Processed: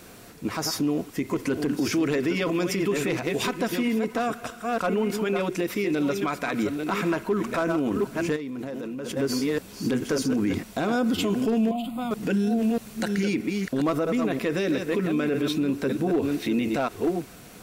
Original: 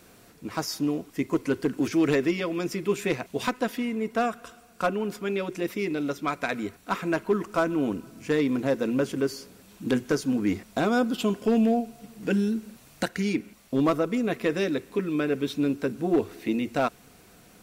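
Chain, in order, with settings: chunks repeated in reverse 639 ms, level -8.5 dB; peak limiter -24 dBFS, peak gain reduction 11.5 dB; 8.36–9.17 s: level held to a coarse grid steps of 20 dB; 11.71–12.11 s: static phaser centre 1.6 kHz, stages 6; trim +7 dB

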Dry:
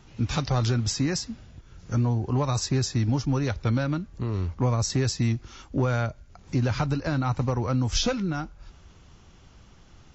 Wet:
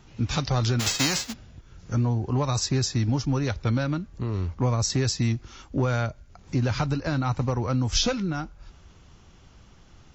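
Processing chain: 0.79–1.32 s: formants flattened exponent 0.3; dynamic bell 4.7 kHz, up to +3 dB, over -40 dBFS, Q 0.71

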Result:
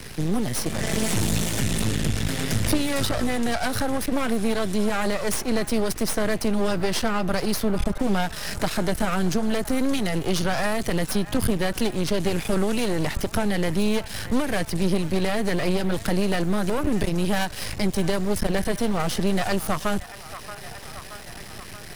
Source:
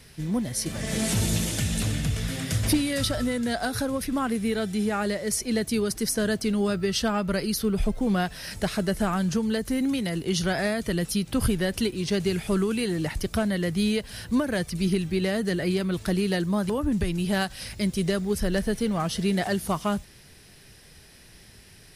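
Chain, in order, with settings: half-wave rectifier; in parallel at -3 dB: peak limiter -25 dBFS, peak gain reduction 11 dB; on the sum: feedback echo behind a band-pass 628 ms, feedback 57%, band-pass 1.4 kHz, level -15.5 dB; three bands compressed up and down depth 40%; trim +3.5 dB

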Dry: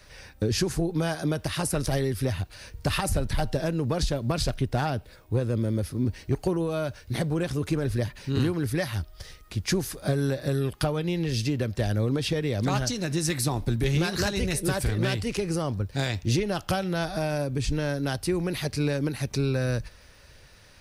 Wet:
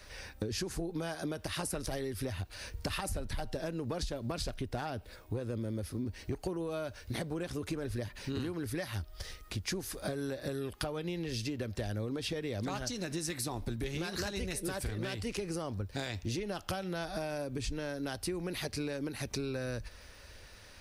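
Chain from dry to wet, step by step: peaking EQ 140 Hz -8.5 dB 0.49 oct; compression 5:1, threshold -34 dBFS, peak gain reduction 11.5 dB

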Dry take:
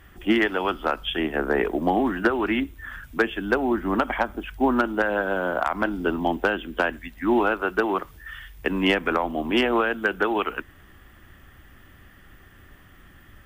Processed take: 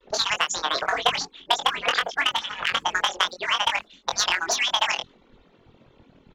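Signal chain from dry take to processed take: harmonic-percussive separation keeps percussive; gate with hold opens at -55 dBFS; level-controlled noise filter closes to 870 Hz, open at -19.5 dBFS; doubling 47 ms -5 dB; wide varispeed 2.12×; trim +1.5 dB

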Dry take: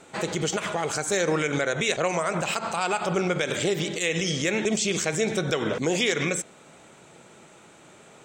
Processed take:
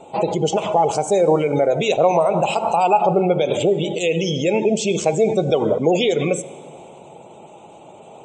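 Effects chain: spectral gate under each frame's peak -20 dB strong; FFT filter 300 Hz 0 dB, 850 Hz +9 dB, 1.7 kHz -22 dB, 2.7 kHz 0 dB, 4.3 kHz -6 dB; plate-style reverb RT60 2.6 s, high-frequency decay 0.8×, DRR 16.5 dB; trim +6 dB

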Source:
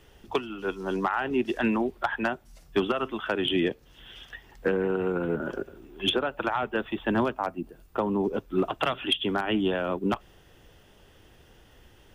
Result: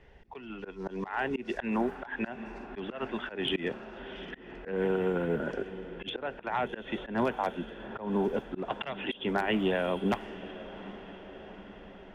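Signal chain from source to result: graphic EQ with 31 bands 100 Hz -10 dB, 315 Hz -7 dB, 1.25 kHz -8 dB, 2 kHz +5 dB, 3.15 kHz -5 dB; echo that smears into a reverb 792 ms, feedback 63%, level -15.5 dB; slow attack 171 ms; level-controlled noise filter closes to 2.4 kHz, open at -25 dBFS

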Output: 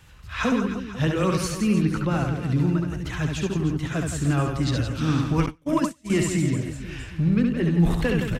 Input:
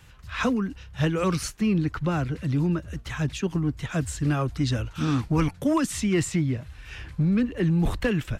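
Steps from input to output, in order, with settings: on a send: reverse bouncing-ball echo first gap 70 ms, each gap 1.4×, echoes 5; 5.46–6.10 s: on the sum: gate -20 dBFS, range -33 dB

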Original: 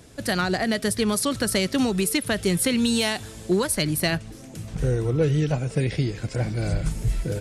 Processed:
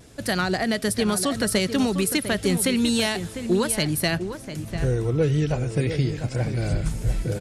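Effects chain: echo from a far wall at 120 m, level -9 dB; vibrato 0.5 Hz 12 cents; 5.76–6.46 s: crackle 42 per s -42 dBFS

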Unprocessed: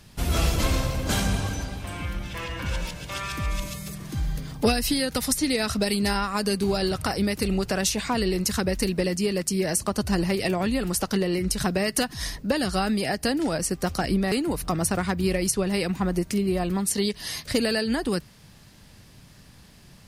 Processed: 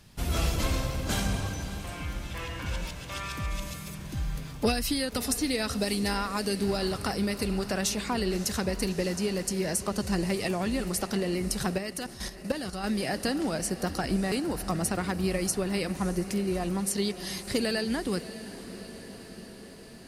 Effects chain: echo that smears into a reverb 607 ms, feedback 70%, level -14 dB; 11.78–12.84 s: level held to a coarse grid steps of 10 dB; trim -4.5 dB

